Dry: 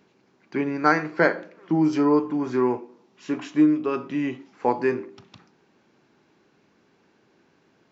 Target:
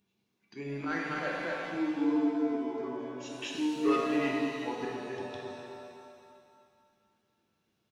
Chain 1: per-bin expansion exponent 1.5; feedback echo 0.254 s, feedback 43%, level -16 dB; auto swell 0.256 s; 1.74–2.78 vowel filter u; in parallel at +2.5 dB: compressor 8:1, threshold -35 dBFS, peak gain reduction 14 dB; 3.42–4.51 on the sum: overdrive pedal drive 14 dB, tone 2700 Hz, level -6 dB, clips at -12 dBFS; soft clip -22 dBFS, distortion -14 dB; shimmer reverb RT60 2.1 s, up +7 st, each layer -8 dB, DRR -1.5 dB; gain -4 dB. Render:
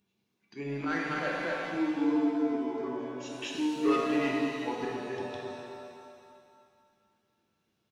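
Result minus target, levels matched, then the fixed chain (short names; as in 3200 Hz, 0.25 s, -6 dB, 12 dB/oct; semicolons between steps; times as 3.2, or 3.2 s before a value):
compressor: peak gain reduction -7.5 dB
per-bin expansion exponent 1.5; feedback echo 0.254 s, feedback 43%, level -16 dB; auto swell 0.256 s; 1.74–2.78 vowel filter u; in parallel at +2.5 dB: compressor 8:1, threshold -43.5 dBFS, peak gain reduction 21.5 dB; 3.42–4.51 on the sum: overdrive pedal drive 14 dB, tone 2700 Hz, level -6 dB, clips at -12 dBFS; soft clip -22 dBFS, distortion -15 dB; shimmer reverb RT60 2.1 s, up +7 st, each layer -8 dB, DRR -1.5 dB; gain -4 dB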